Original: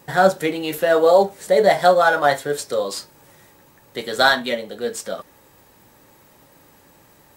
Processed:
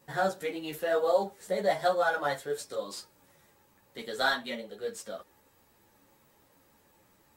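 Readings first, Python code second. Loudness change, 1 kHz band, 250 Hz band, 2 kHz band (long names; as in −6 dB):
−12.5 dB, −12.5 dB, −13.0 dB, −12.0 dB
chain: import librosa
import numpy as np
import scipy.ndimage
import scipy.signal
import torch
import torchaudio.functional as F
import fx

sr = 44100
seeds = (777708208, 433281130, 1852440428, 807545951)

y = fx.ensemble(x, sr)
y = F.gain(torch.from_numpy(y), -9.0).numpy()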